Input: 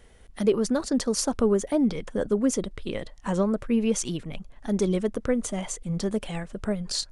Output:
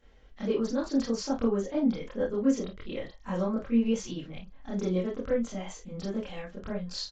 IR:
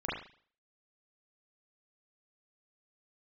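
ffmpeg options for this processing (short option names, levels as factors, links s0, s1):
-filter_complex "[1:a]atrim=start_sample=2205,atrim=end_sample=6174,asetrate=70560,aresample=44100[s0];[0:a][s0]afir=irnorm=-1:irlink=0,aresample=16000,aresample=44100,volume=0.447"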